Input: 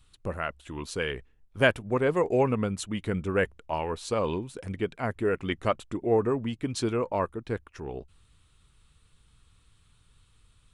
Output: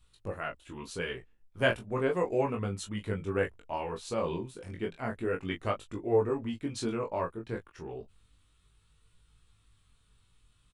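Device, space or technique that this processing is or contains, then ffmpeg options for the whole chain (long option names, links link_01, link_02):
double-tracked vocal: -filter_complex "[0:a]asplit=2[link_01][link_02];[link_02]adelay=18,volume=-6.5dB[link_03];[link_01][link_03]amix=inputs=2:normalize=0,flanger=delay=20:depth=3.7:speed=0.33,volume=-2.5dB"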